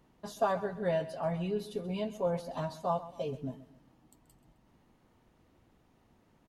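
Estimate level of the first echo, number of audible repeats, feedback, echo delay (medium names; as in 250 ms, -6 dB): -15.5 dB, 3, 37%, 131 ms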